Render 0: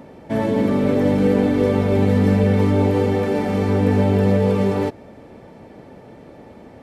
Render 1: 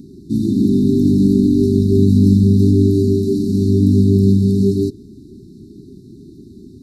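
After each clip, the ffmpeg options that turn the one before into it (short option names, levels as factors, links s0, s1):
-af "afftfilt=real='re*(1-between(b*sr/4096,410,3600))':imag='im*(1-between(b*sr/4096,410,3600))':win_size=4096:overlap=0.75,volume=1.88"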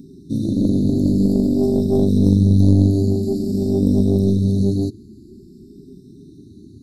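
-af "afftfilt=real='re*pow(10,9/40*sin(2*PI*(1.6*log(max(b,1)*sr/1024/100)/log(2)-(0.5)*(pts-256)/sr)))':imag='im*pow(10,9/40*sin(2*PI*(1.6*log(max(b,1)*sr/1024/100)/log(2)-(0.5)*(pts-256)/sr)))':win_size=1024:overlap=0.75,aeval=exprs='1*(cos(1*acos(clip(val(0)/1,-1,1)))-cos(1*PI/2))+0.355*(cos(2*acos(clip(val(0)/1,-1,1)))-cos(2*PI/2))+0.0224*(cos(4*acos(clip(val(0)/1,-1,1)))-cos(4*PI/2))+0.0126*(cos(5*acos(clip(val(0)/1,-1,1)))-cos(5*PI/2))':c=same,volume=0.596"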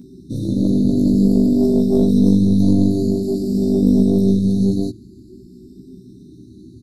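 -filter_complex "[0:a]asplit=2[s0][s1];[s1]adelay=16,volume=0.794[s2];[s0][s2]amix=inputs=2:normalize=0,volume=0.891"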